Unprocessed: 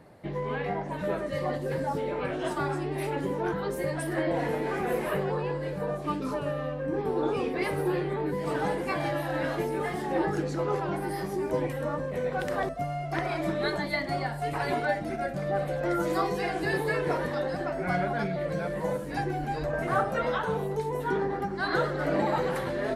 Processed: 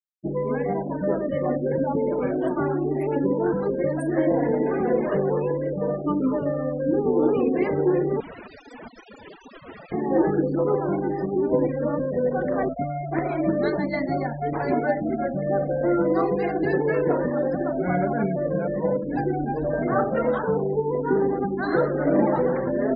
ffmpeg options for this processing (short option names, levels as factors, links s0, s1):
-filter_complex "[0:a]asettb=1/sr,asplit=3[s0][s1][s2];[s0]atrim=end=8.204[s3];[s1]atrim=start=8.2:end=9.92,asetpts=PTS-STARTPTS,afade=t=in:d=0.004:c=qsin,afade=t=out:st=1.716:d=0.004:c=qsin,aeval=exprs='(mod(44.7*val(0)+1,2)-1)/44.7':c=same[s4];[s2]atrim=start=9.916[s5];[s3][s4]acrossfade=d=0.004:c1=hsin:c2=qsin[s6];[s6][s5]acrossfade=d=0.004:c1=qsin:c2=hsin,afftfilt=real='re*gte(hypot(re,im),0.0251)':imag='im*gte(hypot(re,im),0.0251)':win_size=1024:overlap=0.75,equalizer=f=250:t=o:w=1:g=11,equalizer=f=500:t=o:w=1:g=5,equalizer=f=4000:t=o:w=1:g=-7"